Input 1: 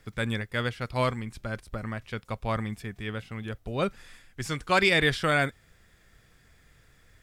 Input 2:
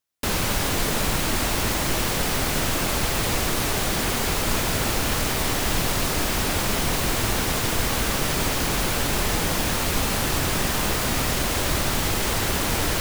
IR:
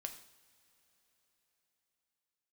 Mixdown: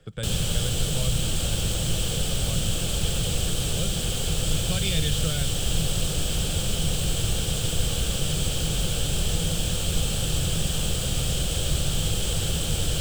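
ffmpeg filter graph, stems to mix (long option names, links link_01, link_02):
-filter_complex "[0:a]volume=2dB[link_01];[1:a]volume=2dB[link_02];[link_01][link_02]amix=inputs=2:normalize=0,highshelf=frequency=3500:gain=-12,acrossover=split=160|3000[link_03][link_04][link_05];[link_04]acompressor=threshold=-37dB:ratio=5[link_06];[link_03][link_06][link_05]amix=inputs=3:normalize=0,equalizer=frequency=160:width_type=o:width=0.33:gain=7,equalizer=frequency=250:width_type=o:width=0.33:gain=-6,equalizer=frequency=500:width_type=o:width=0.33:gain=8,equalizer=frequency=1000:width_type=o:width=0.33:gain=-10,equalizer=frequency=2000:width_type=o:width=0.33:gain=-10,equalizer=frequency=3150:width_type=o:width=0.33:gain=11,equalizer=frequency=8000:width_type=o:width=0.33:gain=12"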